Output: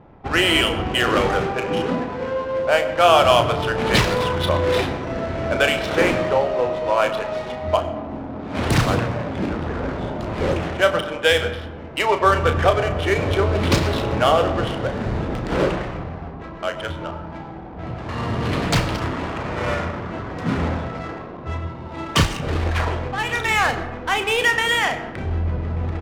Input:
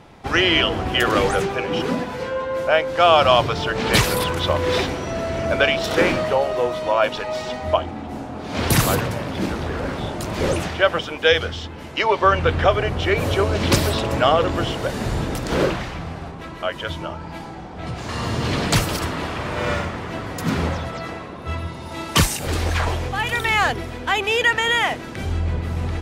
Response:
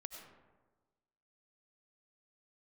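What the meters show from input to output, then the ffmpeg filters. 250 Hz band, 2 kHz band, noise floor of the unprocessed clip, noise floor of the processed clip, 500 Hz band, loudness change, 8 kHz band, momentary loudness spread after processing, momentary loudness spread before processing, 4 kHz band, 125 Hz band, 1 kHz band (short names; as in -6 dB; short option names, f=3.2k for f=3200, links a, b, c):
+0.5 dB, -0.5 dB, -34 dBFS, -34 dBFS, +0.5 dB, 0.0 dB, -4.5 dB, 13 LU, 12 LU, -1.0 dB, +0.5 dB, 0.0 dB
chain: -filter_complex "[0:a]adynamicsmooth=sensitivity=3:basefreq=1.2k,asplit=2[a][b];[b]adelay=34,volume=-9dB[c];[a][c]amix=inputs=2:normalize=0,asplit=2[d][e];[1:a]atrim=start_sample=2205,highshelf=f=10k:g=-10.5[f];[e][f]afir=irnorm=-1:irlink=0,volume=2dB[g];[d][g]amix=inputs=2:normalize=0,volume=-5dB"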